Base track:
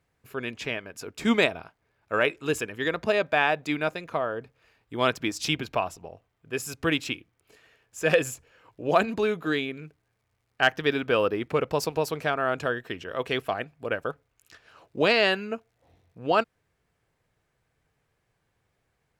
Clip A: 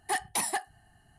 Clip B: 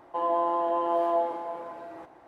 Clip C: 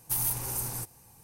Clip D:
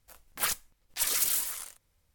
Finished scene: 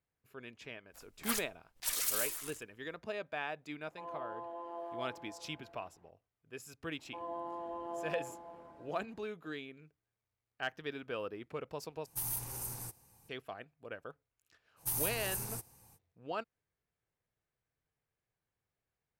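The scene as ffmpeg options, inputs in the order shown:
ffmpeg -i bed.wav -i cue0.wav -i cue1.wav -i cue2.wav -i cue3.wav -filter_complex "[2:a]asplit=2[link_01][link_02];[3:a]asplit=2[link_03][link_04];[0:a]volume=-16.5dB[link_05];[link_02]bass=frequency=250:gain=15,treble=frequency=4000:gain=5[link_06];[link_05]asplit=2[link_07][link_08];[link_07]atrim=end=12.064[link_09];[link_03]atrim=end=1.23,asetpts=PTS-STARTPTS,volume=-8.5dB[link_10];[link_08]atrim=start=13.286[link_11];[4:a]atrim=end=2.14,asetpts=PTS-STARTPTS,volume=-6.5dB,afade=type=in:duration=0.1,afade=type=out:start_time=2.04:duration=0.1,adelay=860[link_12];[link_01]atrim=end=2.27,asetpts=PTS-STARTPTS,volume=-18dB,afade=type=in:duration=0.004:curve=hsin,afade=type=out:start_time=2.266:duration=0.004:curve=hsin,adelay=3830[link_13];[link_06]atrim=end=2.27,asetpts=PTS-STARTPTS,volume=-16.5dB,afade=type=in:duration=0.004:curve=hsin,afade=type=out:start_time=2.266:duration=0.004:curve=hsin,adelay=6990[link_14];[link_04]atrim=end=1.23,asetpts=PTS-STARTPTS,volume=-6dB,afade=type=in:duration=0.05,afade=type=out:start_time=1.18:duration=0.05,adelay=650916S[link_15];[link_09][link_10]acrossfade=duration=0.004:curve1=hsin:curve2=hsin[link_16];[link_16][link_11]acrossfade=duration=0.004:curve1=hsin:curve2=hsin[link_17];[link_17][link_12][link_13][link_14][link_15]amix=inputs=5:normalize=0" out.wav

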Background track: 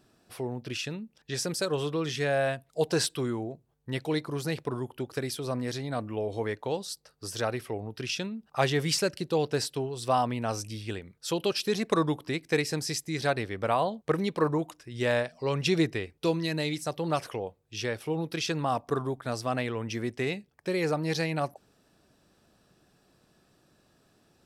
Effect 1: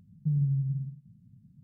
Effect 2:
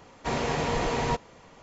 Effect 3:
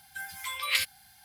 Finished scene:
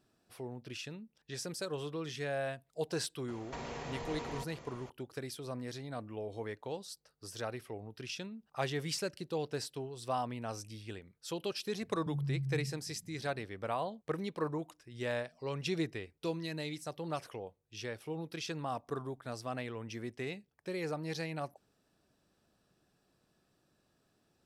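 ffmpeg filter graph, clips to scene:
ffmpeg -i bed.wav -i cue0.wav -i cue1.wav -filter_complex "[0:a]volume=-9.5dB[link_01];[2:a]acompressor=threshold=-38dB:ratio=6:attack=3.2:release=140:knee=1:detection=peak[link_02];[1:a]acompressor=threshold=-31dB:ratio=6:attack=3.2:release=140:knee=1:detection=peak[link_03];[link_02]atrim=end=1.62,asetpts=PTS-STARTPTS,volume=-1.5dB,afade=type=in:duration=0.004:curve=hsin,afade=type=out:start_time=1.616:duration=0.004:curve=hsin,adelay=3280[link_04];[link_03]atrim=end=1.63,asetpts=PTS-STARTPTS,volume=-2.5dB,afade=type=in:duration=0.004:curve=hsin,afade=type=out:start_time=1.626:duration=0.004:curve=hsin,adelay=11810[link_05];[link_01][link_04][link_05]amix=inputs=3:normalize=0" out.wav

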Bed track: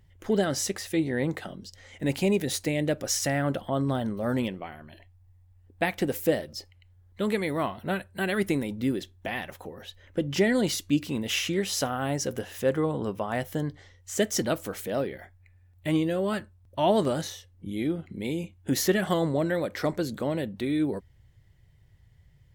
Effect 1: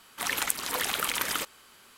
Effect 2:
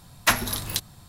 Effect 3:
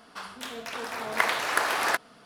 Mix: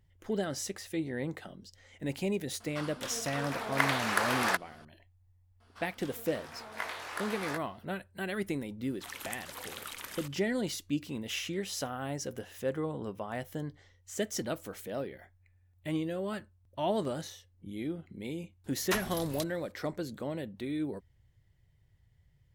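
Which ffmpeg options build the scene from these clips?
ffmpeg -i bed.wav -i cue0.wav -i cue1.wav -i cue2.wav -filter_complex "[3:a]asplit=2[link_01][link_02];[0:a]volume=-8dB[link_03];[link_02]flanger=delay=17:depth=5.7:speed=1[link_04];[link_01]atrim=end=2.25,asetpts=PTS-STARTPTS,volume=-3.5dB,afade=type=in:duration=0.004:curve=hsin,afade=type=out:start_time=2.246:duration=0.004:curve=hsin,adelay=2600[link_05];[link_04]atrim=end=2.25,asetpts=PTS-STARTPTS,volume=-10dB,afade=type=in:duration=0.004:curve=hsin,afade=type=out:start_time=2.246:duration=0.004:curve=hsin,adelay=5600[link_06];[1:a]atrim=end=1.97,asetpts=PTS-STARTPTS,volume=-14dB,afade=type=in:duration=0.004:curve=hsin,afade=type=out:start_time=1.966:duration=0.004:curve=hsin,adelay=8830[link_07];[2:a]atrim=end=1.08,asetpts=PTS-STARTPTS,volume=-12.5dB,afade=type=in:duration=0.004:curve=hsin,afade=type=out:start_time=1.076:duration=0.004:curve=hsin,adelay=18640[link_08];[link_03][link_05][link_06][link_07][link_08]amix=inputs=5:normalize=0" out.wav

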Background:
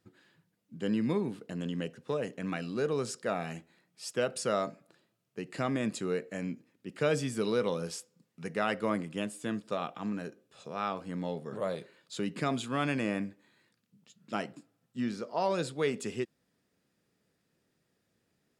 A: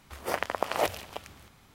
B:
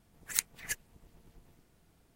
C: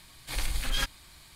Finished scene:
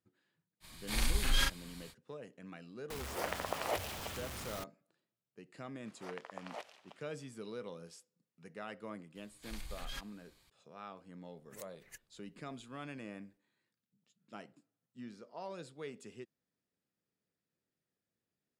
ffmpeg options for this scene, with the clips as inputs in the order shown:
ffmpeg -i bed.wav -i cue0.wav -i cue1.wav -i cue2.wav -filter_complex "[3:a]asplit=2[link_01][link_02];[1:a]asplit=2[link_03][link_04];[0:a]volume=-15dB[link_05];[link_01]asplit=2[link_06][link_07];[link_07]adelay=40,volume=-2dB[link_08];[link_06][link_08]amix=inputs=2:normalize=0[link_09];[link_03]aeval=exprs='val(0)+0.5*0.0355*sgn(val(0))':channel_layout=same[link_10];[link_04]highpass=520,lowpass=6800[link_11];[link_02]equalizer=frequency=9600:width_type=o:width=0.3:gain=-3.5[link_12];[2:a]alimiter=limit=-12.5dB:level=0:latency=1:release=191[link_13];[link_09]atrim=end=1.35,asetpts=PTS-STARTPTS,volume=-3dB,afade=type=in:duration=0.05,afade=type=out:start_time=1.3:duration=0.05,adelay=600[link_14];[link_10]atrim=end=1.74,asetpts=PTS-STARTPTS,volume=-10.5dB,afade=type=in:duration=0.004:curve=hsin,afade=type=out:start_time=1.736:duration=0.004:curve=hsin,adelay=2900[link_15];[link_11]atrim=end=1.74,asetpts=PTS-STARTPTS,volume=-17.5dB,afade=type=in:duration=0.004:curve=hsin,afade=type=out:start_time=1.736:duration=0.004:curve=hsin,adelay=5750[link_16];[link_12]atrim=end=1.35,asetpts=PTS-STARTPTS,volume=-15dB,afade=type=in:duration=0.004:curve=hsin,afade=type=out:start_time=1.346:duration=0.004:curve=hsin,adelay=9150[link_17];[link_13]atrim=end=2.15,asetpts=PTS-STARTPTS,volume=-17.5dB,afade=type=in:duration=0.004:curve=hsin,afade=type=out:start_time=2.146:duration=0.004:curve=hsin,adelay=11230[link_18];[link_05][link_14][link_15][link_16][link_17][link_18]amix=inputs=6:normalize=0" out.wav

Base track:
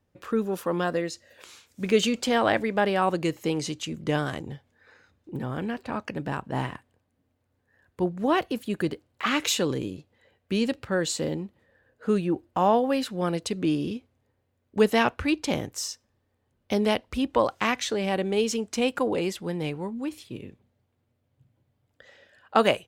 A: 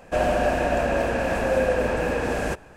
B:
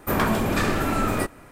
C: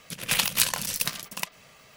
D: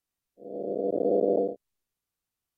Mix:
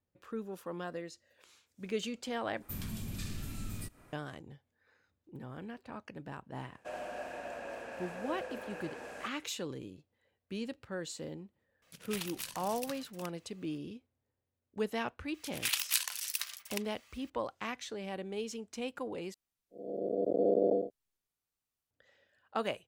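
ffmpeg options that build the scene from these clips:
ffmpeg -i bed.wav -i cue0.wav -i cue1.wav -i cue2.wav -i cue3.wav -filter_complex "[3:a]asplit=2[link_01][link_02];[0:a]volume=-14dB[link_03];[2:a]acrossover=split=200|3000[link_04][link_05][link_06];[link_05]acompressor=threshold=-47dB:ratio=6:attack=3.2:release=140:knee=2.83:detection=peak[link_07];[link_04][link_07][link_06]amix=inputs=3:normalize=0[link_08];[1:a]highpass=frequency=510:poles=1[link_09];[link_01]alimiter=limit=-8.5dB:level=0:latency=1:release=115[link_10];[link_02]highpass=1400[link_11];[link_03]asplit=3[link_12][link_13][link_14];[link_12]atrim=end=2.624[link_15];[link_08]atrim=end=1.51,asetpts=PTS-STARTPTS,volume=-11.5dB[link_16];[link_13]atrim=start=4.126:end=19.344[link_17];[4:a]atrim=end=2.57,asetpts=PTS-STARTPTS,volume=-4dB[link_18];[link_14]atrim=start=21.906[link_19];[link_09]atrim=end=2.76,asetpts=PTS-STARTPTS,volume=-17.5dB,afade=type=in:duration=0.004:curve=hsin,afade=type=out:start_time=2.756:duration=0.004:curve=hsin,adelay=6730[link_20];[link_10]atrim=end=1.96,asetpts=PTS-STARTPTS,volume=-16.5dB,afade=type=in:duration=0.004:curve=hsin,afade=type=out:start_time=1.956:duration=0.004:curve=hsin,adelay=11820[link_21];[link_11]atrim=end=1.96,asetpts=PTS-STARTPTS,volume=-8dB,afade=type=in:duration=0.004:curve=hsin,afade=type=out:start_time=1.956:duration=0.004:curve=hsin,adelay=15340[link_22];[link_15][link_16]acrossfade=duration=0.004:curve1=hsin:curve2=hsin[link_23];[link_23][link_17]acrossfade=duration=0.004:curve1=hsin:curve2=hsin[link_24];[link_24][link_18]acrossfade=duration=0.004:curve1=hsin:curve2=hsin[link_25];[link_25][link_19]acrossfade=duration=0.004:curve1=hsin:curve2=hsin[link_26];[link_26][link_20][link_21][link_22]amix=inputs=4:normalize=0" out.wav

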